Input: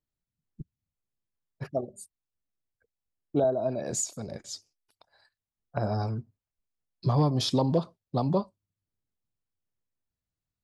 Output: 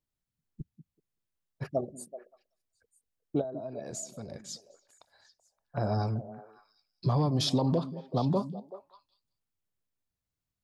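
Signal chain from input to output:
0:03.41–0:05.78: downward compressor 4 to 1, threshold −38 dBFS, peak gain reduction 14 dB
brickwall limiter −18.5 dBFS, peak gain reduction 4.5 dB
echo through a band-pass that steps 190 ms, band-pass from 210 Hz, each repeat 1.4 octaves, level −9.5 dB

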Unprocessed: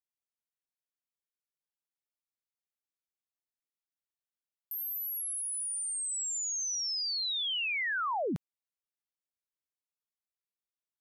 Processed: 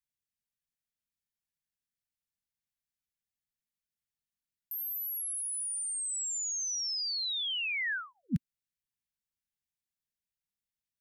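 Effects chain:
elliptic band-stop filter 240–1,600 Hz
bass and treble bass +9 dB, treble 0 dB

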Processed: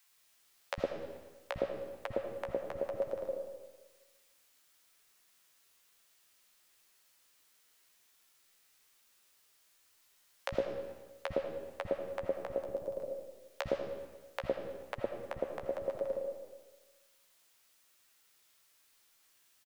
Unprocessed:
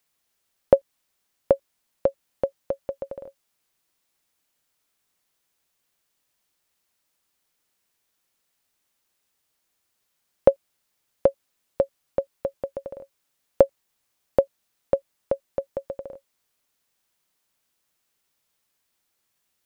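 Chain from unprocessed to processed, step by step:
0:12.55–0:12.99: parametric band 1,700 Hz −14.5 dB 1.7 octaves
harmonic and percussive parts rebalanced percussive −6 dB
low-shelf EQ 420 Hz −7.5 dB
downward compressor, threshold −37 dBFS, peak gain reduction 17.5 dB
flanger 1 Hz, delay 7.4 ms, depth 9.3 ms, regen +19%
three-band delay without the direct sound highs, lows, mids 50/110 ms, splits 180/710 Hz
on a send at −4.5 dB: convolution reverb RT60 1.3 s, pre-delay 40 ms
on the sum: level +12 dB

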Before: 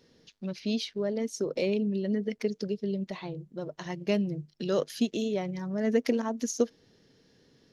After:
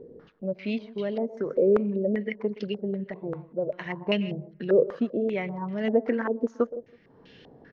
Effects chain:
on a send: repeating echo 162 ms, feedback 23%, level −18.5 dB
on the sum: upward compression, threshold −43 dBFS
far-end echo of a speakerphone 120 ms, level −16 dB
low-pass on a step sequencer 5.1 Hz 450–2,900 Hz

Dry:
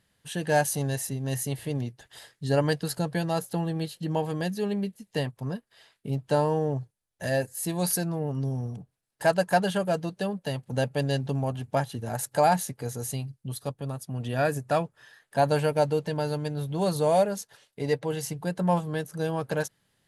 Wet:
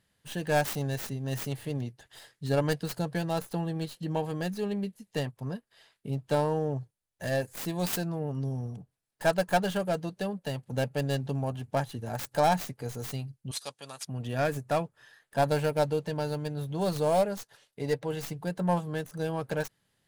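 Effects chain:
stylus tracing distortion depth 0.38 ms
0:13.51–0:14.05: meter weighting curve ITU-R 468
level −3 dB

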